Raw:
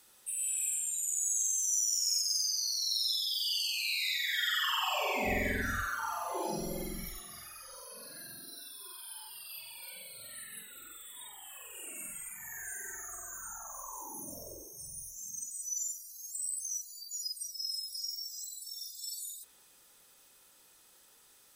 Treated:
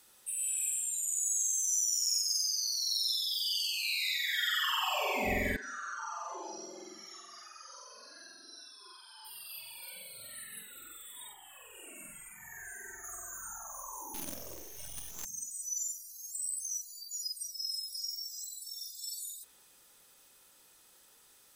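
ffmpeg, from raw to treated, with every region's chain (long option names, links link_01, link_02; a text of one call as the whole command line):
ffmpeg -i in.wav -filter_complex "[0:a]asettb=1/sr,asplit=3[link_01][link_02][link_03];[link_01]atrim=end=0.724[link_04];[link_02]atrim=start=0.72:end=3.83,asetpts=PTS-STARTPTS,afade=type=in:duration=0.004:curve=qsin,afade=type=out:start_time=3.106:duration=0.004:curve=qsin,afreqshift=49,acrossover=split=1500[link_05][link_06];[link_05]adelay=60[link_07];[link_07][link_06]amix=inputs=2:normalize=0,atrim=end_sample=137151[link_08];[link_03]atrim=start=3.826[link_09];[link_04][link_08]acrossfade=duration=0.004:curve1=hsin:curve2=qsin[link_10];[link_10][link_09]acrossfade=duration=0.004:curve1=qsin:curve2=hsin,asettb=1/sr,asplit=3[link_11][link_12][link_13];[link_11]atrim=end=5.564[link_14];[link_12]atrim=start=5.56:end=9.25,asetpts=PTS-STARTPTS,afade=type=in:duration=0.004:curve=qsin,afade=type=out:start_time=3.686:duration=0.004:curve=qsin,acompressor=threshold=-38dB:ratio=4:attack=3.2:release=140:knee=1:detection=peak,highpass=frequency=320:width=0.5412,highpass=frequency=320:width=1.3066,equalizer=frequency=500:width_type=q:width=4:gain=-8,equalizer=frequency=1200:width_type=q:width=4:gain=4,equalizer=frequency=2200:width_type=q:width=4:gain=-7,equalizer=frequency=3600:width_type=q:width=4:gain=-6,equalizer=frequency=5900:width_type=q:width=4:gain=8,lowpass=frequency=7000:width=0.5412,lowpass=frequency=7000:width=1.3066,bandreject=frequency=730:width=21[link_15];[link_13]atrim=start=9.246[link_16];[link_14][link_15]acrossfade=duration=0.004:curve1=hsin:curve2=qsin[link_17];[link_17][link_16]acrossfade=duration=0.004:curve1=qsin:curve2=hsin,asettb=1/sr,asplit=3[link_18][link_19][link_20];[link_18]atrim=end=11.334[link_21];[link_19]atrim=start=11.33:end=13.04,asetpts=PTS-STARTPTS,afade=type=in:duration=0.004:curve=qsin,afade=type=out:start_time=1.706:duration=0.004:curve=qsin,highshelf=frequency=4100:gain=-8,bandreject=frequency=1300:width=22[link_22];[link_20]atrim=start=13.036[link_23];[link_21][link_22]acrossfade=duration=0.004:curve1=hsin:curve2=qsin[link_24];[link_24][link_23]acrossfade=duration=0.004:curve1=qsin:curve2=hsin,asettb=1/sr,asplit=3[link_25][link_26][link_27];[link_25]atrim=end=14.144[link_28];[link_26]atrim=start=14.14:end=15.25,asetpts=PTS-STARTPTS,afade=type=in:duration=0.004:curve=qsin,afade=type=out:start_time=1.106:duration=0.004:curve=qsin,acrusher=bits=7:dc=4:mix=0:aa=0.000001,acontrast=36,equalizer=frequency=8300:width_type=o:width=0.26:gain=-6[link_29];[link_27]atrim=start=15.246[link_30];[link_28][link_29]acrossfade=duration=0.004:curve1=hsin:curve2=qsin[link_31];[link_31][link_30]acrossfade=duration=0.004:curve1=qsin:curve2=hsin" out.wav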